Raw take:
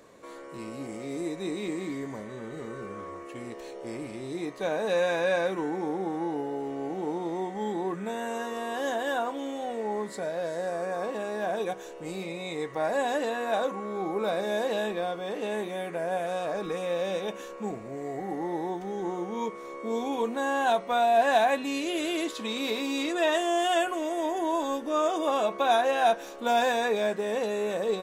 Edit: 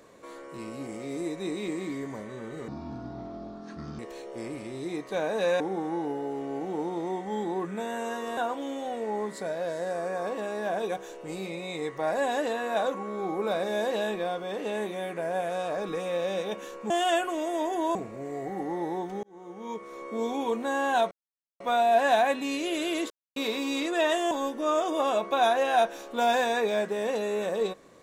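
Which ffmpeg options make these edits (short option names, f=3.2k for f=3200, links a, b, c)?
-filter_complex "[0:a]asplit=12[a][b][c][d][e][f][g][h][i][j][k][l];[a]atrim=end=2.684[m];[b]atrim=start=2.68:end=3.48,asetpts=PTS-STARTPTS,asetrate=26901,aresample=44100,atrim=end_sample=57836,asetpts=PTS-STARTPTS[n];[c]atrim=start=3.476:end=5.092[o];[d]atrim=start=5.888:end=8.662[p];[e]atrim=start=9.138:end=17.672[q];[f]atrim=start=23.538:end=24.592[r];[g]atrim=start=17.668:end=18.95,asetpts=PTS-STARTPTS,afade=t=out:st=1.278:d=0.004:c=hsin[s];[h]atrim=start=18.95:end=20.83,asetpts=PTS-STARTPTS,afade=t=in:d=0.83,afade=t=out:st=1.876:d=0.004:c=hsin,apad=pad_dur=0.49[t];[i]atrim=start=20.83:end=22.33,asetpts=PTS-STARTPTS,afade=t=in:d=0.004:c=hsin,afade=t=out:st=1.496:d=0.004:c=hsin[u];[j]atrim=start=22.33:end=22.59,asetpts=PTS-STARTPTS,volume=0[v];[k]atrim=start=22.59:end=23.542,asetpts=PTS-STARTPTS,afade=t=in:d=0.004:c=hsin[w];[l]atrim=start=24.588[x];[m][n]acrossfade=d=0.004:c1=hsin:c2=hsin[y];[y][o]acrossfade=d=0.004:c1=hsin:c2=hsin[z];[z][p]acrossfade=d=0.004:c1=hsin:c2=hsin[aa];[aa][q]acrossfade=d=0.004:c1=hsin:c2=hsin[ab];[ab][r]acrossfade=d=0.004:c1=hsin:c2=hsin[ac];[s][t][u][v][w]concat=n=5:v=0:a=1[ad];[ac][ad]acrossfade=d=0.004:c1=hsin:c2=hsin[ae];[ae][x]acrossfade=d=0.004:c1=hsin:c2=hsin"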